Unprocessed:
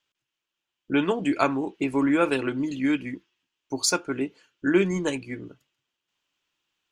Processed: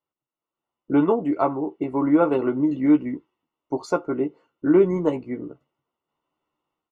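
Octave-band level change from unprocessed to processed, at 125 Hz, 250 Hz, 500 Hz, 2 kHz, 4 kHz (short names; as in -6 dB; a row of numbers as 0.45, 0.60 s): +2.0 dB, +4.0 dB, +5.0 dB, -8.0 dB, under -15 dB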